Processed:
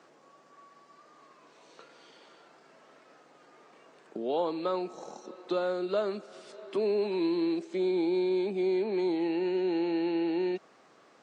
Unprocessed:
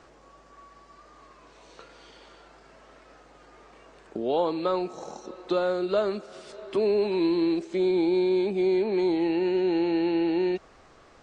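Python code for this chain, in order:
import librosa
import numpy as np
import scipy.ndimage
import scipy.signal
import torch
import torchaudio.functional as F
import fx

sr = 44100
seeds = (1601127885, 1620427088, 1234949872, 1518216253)

y = scipy.signal.sosfilt(scipy.signal.butter(4, 160.0, 'highpass', fs=sr, output='sos'), x)
y = y * librosa.db_to_amplitude(-4.5)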